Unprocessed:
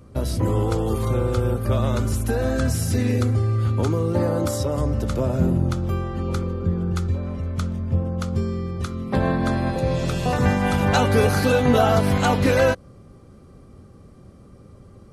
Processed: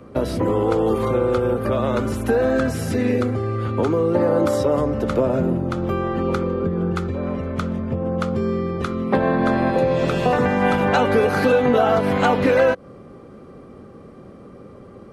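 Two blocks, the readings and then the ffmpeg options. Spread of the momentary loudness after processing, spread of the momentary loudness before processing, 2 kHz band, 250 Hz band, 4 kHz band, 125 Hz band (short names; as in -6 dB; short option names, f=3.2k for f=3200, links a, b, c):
7 LU, 8 LU, +2.5 dB, +2.5 dB, -2.0 dB, -4.5 dB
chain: -filter_complex "[0:a]equalizer=f=470:t=o:w=0.32:g=3,acompressor=threshold=-21dB:ratio=6,acrossover=split=180 3200:gain=0.2 1 0.224[a][b][c];[a][b][c]amix=inputs=3:normalize=0,volume=9dB"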